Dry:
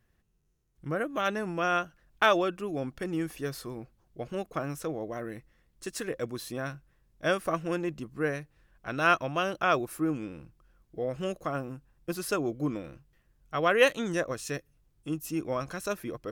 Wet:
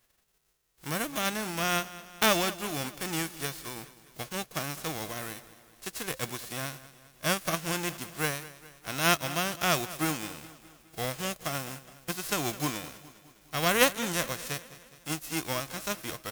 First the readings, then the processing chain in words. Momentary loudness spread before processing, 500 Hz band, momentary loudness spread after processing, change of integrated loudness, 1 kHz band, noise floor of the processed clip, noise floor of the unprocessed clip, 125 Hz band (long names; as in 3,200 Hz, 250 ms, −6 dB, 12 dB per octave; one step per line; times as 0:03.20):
17 LU, −4.5 dB, 17 LU, 0.0 dB, −1.5 dB, −62 dBFS, −70 dBFS, +0.5 dB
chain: spectral envelope flattened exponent 0.3
repeating echo 207 ms, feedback 55%, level −17 dB
level −1 dB